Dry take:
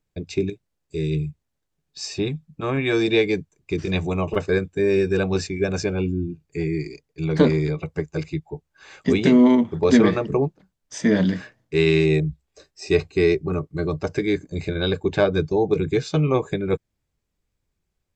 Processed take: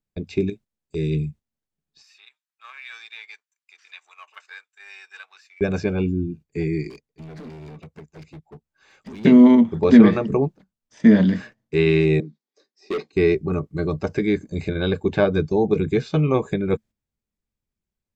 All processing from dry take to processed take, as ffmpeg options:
ffmpeg -i in.wav -filter_complex "[0:a]asettb=1/sr,asplit=3[link_01][link_02][link_03];[link_01]atrim=end=2.024[link_04];[link_02]atrim=start=2.02:end=5.61,asetpts=PTS-STARTPTS,afade=type=in:duration=0.004:curve=qsin,afade=type=out:start_time=3.586:duration=0.004:curve=qsin,aeval=exprs='if(lt(val(0),0),0.708*val(0),val(0))':channel_layout=same,highpass=frequency=1200:width=0.5412,highpass=frequency=1200:width=1.3066,acompressor=threshold=-37dB:ratio=3:attack=3.2:release=140:knee=1:detection=peak[link_05];[link_03]atrim=start=5.606[link_06];[link_04][link_05]acrossfade=duration=0.004:curve1=hsin:curve2=qsin[link_07];[link_07][link_06]acrossfade=duration=0.004:curve1=qsin:curve2=hsin,asettb=1/sr,asplit=3[link_08][link_09][link_10];[link_08]atrim=end=6.904[link_11];[link_09]atrim=start=6.9:end=9.25,asetpts=PTS-STARTPTS,afade=type=in:duration=0.004:curve=qsin,afade=type=out:start_time=2.346:duration=0.004:curve=qsin,acompressor=threshold=-31dB:ratio=12:attack=3.2:release=140:knee=1:detection=peak,asoftclip=type=hard:threshold=-37dB[link_12];[link_10]atrim=start=9.246[link_13];[link_11][link_12]acrossfade=duration=0.004:curve1=hsin:curve2=qsin[link_14];[link_14][link_13]acrossfade=duration=0.004:curve1=qsin:curve2=hsin,asettb=1/sr,asplit=3[link_15][link_16][link_17];[link_15]atrim=end=12.204[link_18];[link_16]atrim=start=12.2:end=13.13,asetpts=PTS-STARTPTS,afade=type=in:duration=0.004:curve=qsin,afade=type=out:start_time=0.926:duration=0.004:curve=qsin,highpass=frequency=240:width=0.5412,highpass=frequency=240:width=1.3066,equalizer=frequency=650:width_type=q:width=4:gain=-7,equalizer=frequency=1400:width_type=q:width=4:gain=-4,equalizer=frequency=2700:width_type=q:width=4:gain=-8,equalizer=frequency=4200:width_type=q:width=4:gain=4,lowpass=frequency=6100:width=0.5412,lowpass=frequency=6100:width=1.3066,bandreject=frequency=4100:width=22,asoftclip=type=hard:threshold=-22dB[link_19];[link_17]atrim=start=13.126[link_20];[link_18][link_19]acrossfade=duration=0.004:curve1=hsin:curve2=qsin[link_21];[link_21][link_20]acrossfade=duration=0.004:curve1=qsin:curve2=hsin,acrossover=split=3800[link_22][link_23];[link_23]acompressor=threshold=-49dB:ratio=4:attack=1:release=60[link_24];[link_22][link_24]amix=inputs=2:normalize=0,equalizer=frequency=220:width_type=o:width=0.27:gain=10,agate=range=-10dB:threshold=-40dB:ratio=16:detection=peak" out.wav

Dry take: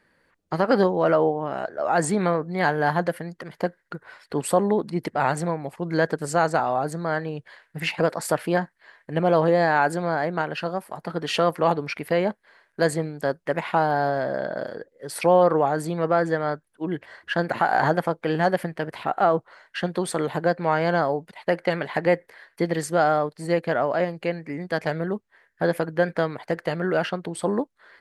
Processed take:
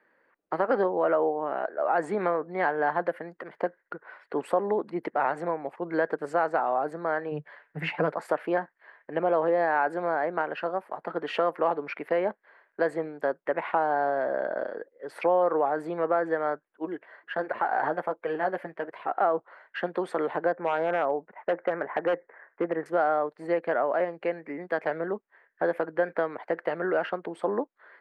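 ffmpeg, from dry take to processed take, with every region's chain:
ffmpeg -i in.wav -filter_complex "[0:a]asettb=1/sr,asplit=3[link_01][link_02][link_03];[link_01]atrim=end=7.314[link_04];[link_02]atrim=start=7.31:end=8.18,asetpts=PTS-STARTPTS,afade=type=in:duration=0.004:curve=qsin,afade=type=out:start_time=0.866:duration=0.004:curve=qsin,equalizer=frequency=150:width=2:gain=11.5,aecho=1:1:6.9:0.41,atrim=end_sample=38367[link_05];[link_03]atrim=start=8.176[link_06];[link_04][link_05]acrossfade=duration=0.004:curve1=hsin:curve2=qsin[link_07];[link_07][link_06]acrossfade=duration=0.004:curve1=qsin:curve2=hsin,asettb=1/sr,asplit=3[link_08][link_09][link_10];[link_08]atrim=end=16.854[link_11];[link_09]atrim=start=16.85:end=19.15,asetpts=PTS-STARTPTS,afade=type=in:duration=0.004:curve=qsin,afade=type=out:start_time=2.296:duration=0.004:curve=qsin,flanger=delay=1.7:depth=5.3:regen=-35:speed=1.4:shape=sinusoidal,acrusher=bits=9:mode=log:mix=0:aa=0.000001[link_12];[link_10]atrim=start=19.146[link_13];[link_11][link_12]acrossfade=duration=0.004:curve1=hsin:curve2=qsin[link_14];[link_14][link_13]acrossfade=duration=0.004:curve1=qsin:curve2=hsin,asettb=1/sr,asplit=3[link_15][link_16][link_17];[link_15]atrim=end=20.524[link_18];[link_16]atrim=start=20.52:end=22.86,asetpts=PTS-STARTPTS,afade=type=in:duration=0.004:curve=qsin,afade=type=out:start_time=2.336:duration=0.004:curve=qsin,lowpass=frequency=1900:width=0.5412,lowpass=frequency=1900:width=1.3066,aeval=exprs='0.188*(abs(mod(val(0)/0.188+3,4)-2)-1)':channel_layout=same[link_19];[link_17]atrim=start=22.856[link_20];[link_18][link_19]acrossfade=duration=0.004:curve1=hsin:curve2=qsin[link_21];[link_21][link_20]acrossfade=duration=0.004:curve1=qsin:curve2=hsin,acrossover=split=270 2400:gain=0.0708 1 0.0708[link_22][link_23][link_24];[link_22][link_23][link_24]amix=inputs=3:normalize=0,acompressor=threshold=-23dB:ratio=2" out.wav

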